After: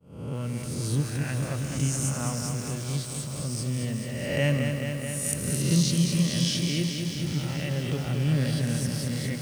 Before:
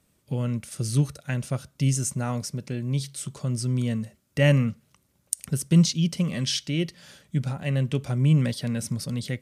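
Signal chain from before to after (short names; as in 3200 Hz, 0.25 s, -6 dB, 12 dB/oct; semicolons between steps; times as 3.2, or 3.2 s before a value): spectral swells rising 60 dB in 1.14 s; expander -32 dBFS; lo-fi delay 0.215 s, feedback 80%, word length 7-bit, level -5.5 dB; gain -6 dB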